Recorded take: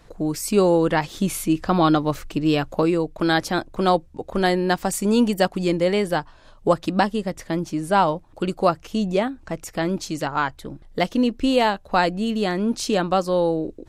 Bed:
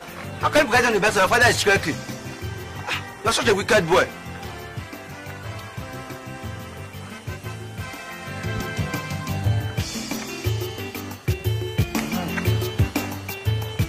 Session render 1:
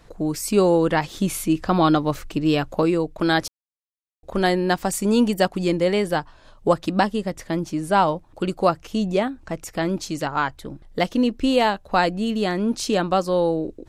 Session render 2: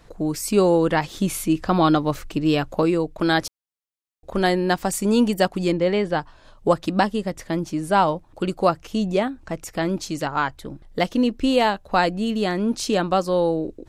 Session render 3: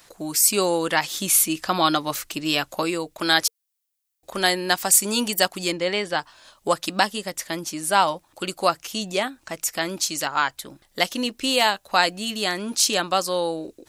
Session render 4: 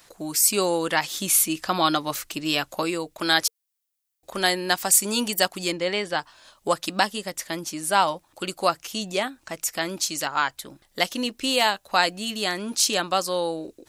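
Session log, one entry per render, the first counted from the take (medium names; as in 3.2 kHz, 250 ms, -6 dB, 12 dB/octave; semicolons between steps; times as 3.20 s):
3.48–4.23 s: mute
5.72–6.19 s: distance through air 110 m
tilt EQ +4 dB/octave; band-stop 460 Hz, Q 12
trim -1.5 dB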